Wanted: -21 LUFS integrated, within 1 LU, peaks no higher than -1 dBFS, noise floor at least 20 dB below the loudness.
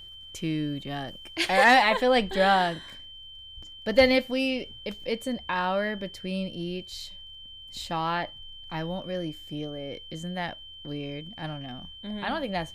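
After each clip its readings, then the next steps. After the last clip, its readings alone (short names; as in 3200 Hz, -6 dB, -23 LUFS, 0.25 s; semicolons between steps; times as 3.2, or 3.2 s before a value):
ticks 21/s; steady tone 3100 Hz; tone level -43 dBFS; loudness -27.0 LUFS; peak -9.5 dBFS; loudness target -21.0 LUFS
-> de-click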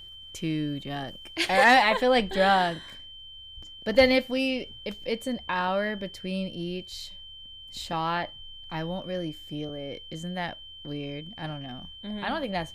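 ticks 0/s; steady tone 3100 Hz; tone level -43 dBFS
-> notch 3100 Hz, Q 30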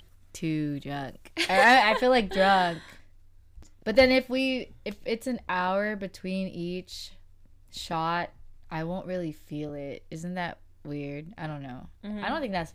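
steady tone none; loudness -27.0 LUFS; peak -9.5 dBFS; loudness target -21.0 LUFS
-> gain +6 dB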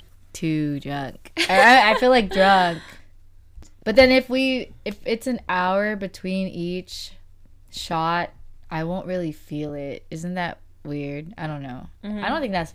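loudness -21.0 LUFS; peak -3.5 dBFS; noise floor -49 dBFS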